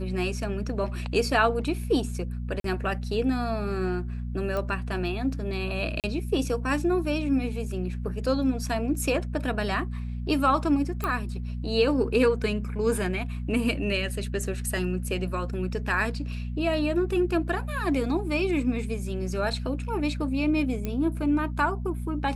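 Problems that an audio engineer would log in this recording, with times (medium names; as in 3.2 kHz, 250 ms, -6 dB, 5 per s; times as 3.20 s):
hum 60 Hz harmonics 4 -32 dBFS
2.60–2.64 s: dropout 43 ms
4.57 s: pop -18 dBFS
6.00–6.04 s: dropout 38 ms
11.04 s: pop -15 dBFS
20.85 s: pop -17 dBFS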